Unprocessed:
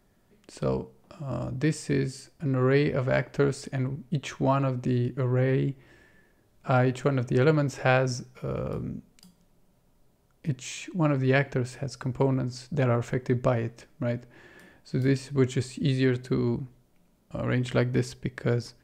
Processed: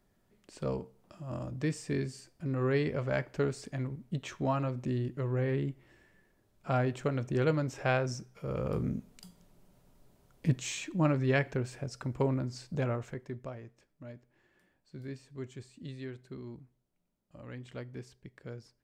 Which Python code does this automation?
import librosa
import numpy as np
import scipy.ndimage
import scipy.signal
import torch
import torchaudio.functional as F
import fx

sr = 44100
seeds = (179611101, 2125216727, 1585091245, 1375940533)

y = fx.gain(x, sr, db=fx.line((8.36, -6.5), (8.85, 1.5), (10.51, 1.5), (11.32, -5.0), (12.71, -5.0), (13.49, -18.0)))